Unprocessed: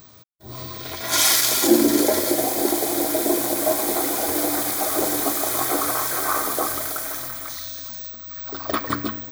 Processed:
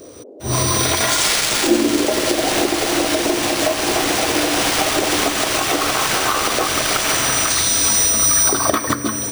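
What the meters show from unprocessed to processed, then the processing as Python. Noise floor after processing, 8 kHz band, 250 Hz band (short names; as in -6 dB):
-28 dBFS, +8.0 dB, +3.0 dB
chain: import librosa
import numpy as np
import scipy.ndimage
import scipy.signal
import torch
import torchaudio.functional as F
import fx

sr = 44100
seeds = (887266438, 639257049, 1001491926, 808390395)

y = fx.recorder_agc(x, sr, target_db=-7.5, rise_db_per_s=33.0, max_gain_db=30)
y = np.repeat(y[::3], 3)[:len(y)]
y = fx.dmg_noise_band(y, sr, seeds[0], low_hz=260.0, high_hz=570.0, level_db=-39.0)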